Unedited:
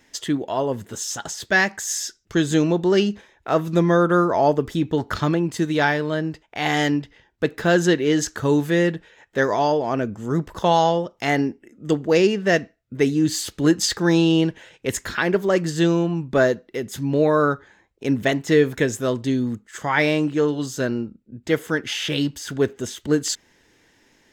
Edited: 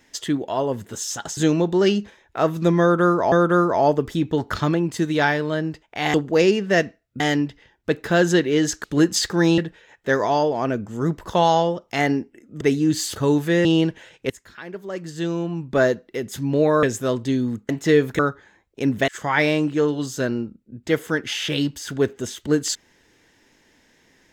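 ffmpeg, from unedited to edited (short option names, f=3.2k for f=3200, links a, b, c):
-filter_complex "[0:a]asplit=15[a][b][c][d][e][f][g][h][i][j][k][l][m][n][o];[a]atrim=end=1.372[p];[b]atrim=start=2.478:end=4.432[q];[c]atrim=start=3.918:end=6.742[r];[d]atrim=start=11.898:end=12.962[s];[e]atrim=start=6.738:end=8.382[t];[f]atrim=start=13.508:end=14.252[u];[g]atrim=start=8.868:end=11.902[v];[h]atrim=start=12.958:end=13.512[w];[i]atrim=start=8.378:end=8.872[x];[j]atrim=start=14.248:end=14.9,asetpts=PTS-STARTPTS,afade=t=out:st=0.648:d=0.004:c=hsin:silence=0.125893[y];[k]atrim=start=14.9:end=17.432,asetpts=PTS-STARTPTS,afade=t=in:d=1.57:c=qua:silence=0.125893[z];[l]atrim=start=18.818:end=19.682[aa];[m]atrim=start=18.318:end=18.822[ab];[n]atrim=start=17.428:end=18.322[ac];[o]atrim=start=19.678[ad];[p][q]acrossfade=d=0.004:c1=hsin:c2=hsin[ae];[ae][r]acrossfade=d=0.004:c1=hsin:c2=hsin[af];[af][s]acrossfade=d=0.004:c1=hsin:c2=hsin[ag];[ag][t]acrossfade=d=0.004:c1=hsin:c2=hsin[ah];[ah][u]acrossfade=d=0.004:c1=hsin:c2=hsin[ai];[ai][v]acrossfade=d=0.004:c1=hsin:c2=hsin[aj];[aj][w]acrossfade=d=0.004:c1=hsin:c2=hsin[ak];[ak][x]acrossfade=d=0.004:c1=hsin:c2=hsin[al];[y][z]concat=n=2:v=0:a=1[am];[al][am]acrossfade=d=0.004:c1=hsin:c2=hsin[an];[an][aa]acrossfade=d=0.004:c1=hsin:c2=hsin[ao];[ao][ab]acrossfade=d=0.004:c1=hsin:c2=hsin[ap];[ap][ac]acrossfade=d=0.004:c1=hsin:c2=hsin[aq];[aq][ad]acrossfade=d=0.004:c1=hsin:c2=hsin"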